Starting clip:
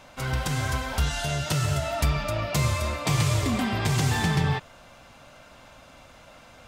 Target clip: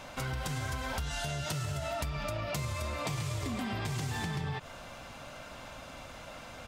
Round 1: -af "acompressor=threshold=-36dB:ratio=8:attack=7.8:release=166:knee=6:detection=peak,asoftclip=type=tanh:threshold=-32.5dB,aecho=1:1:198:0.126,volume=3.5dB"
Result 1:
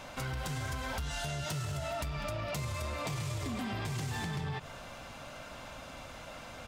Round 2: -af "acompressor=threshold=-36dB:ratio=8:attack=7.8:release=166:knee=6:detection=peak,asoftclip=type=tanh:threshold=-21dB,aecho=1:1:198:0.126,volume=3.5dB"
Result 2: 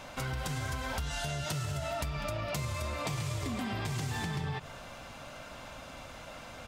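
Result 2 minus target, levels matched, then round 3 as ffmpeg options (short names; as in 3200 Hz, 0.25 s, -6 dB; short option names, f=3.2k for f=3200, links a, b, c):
echo-to-direct +11 dB
-af "acompressor=threshold=-36dB:ratio=8:attack=7.8:release=166:knee=6:detection=peak,asoftclip=type=tanh:threshold=-21dB,aecho=1:1:198:0.0355,volume=3.5dB"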